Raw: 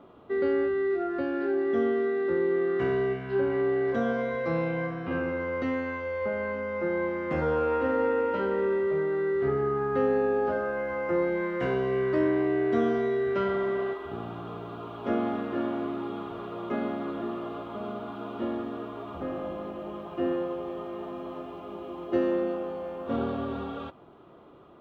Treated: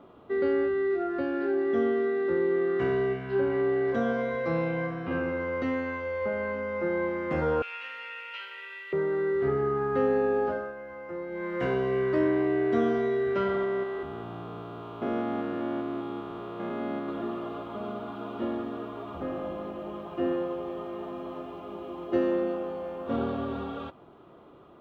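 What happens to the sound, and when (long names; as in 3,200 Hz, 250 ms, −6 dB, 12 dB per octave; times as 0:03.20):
0:07.62–0:08.93: high-pass with resonance 2,600 Hz, resonance Q 3.7
0:10.42–0:11.61: duck −10.5 dB, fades 0.33 s
0:13.64–0:17.09: spectrum averaged block by block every 200 ms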